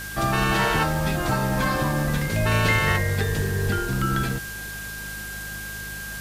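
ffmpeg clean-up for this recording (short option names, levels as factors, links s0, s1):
-af "adeclick=t=4,bandreject=f=51.8:t=h:w=4,bandreject=f=103.6:t=h:w=4,bandreject=f=155.4:t=h:w=4,bandreject=f=207.2:t=h:w=4,bandreject=f=1600:w=30,afwtdn=0.013"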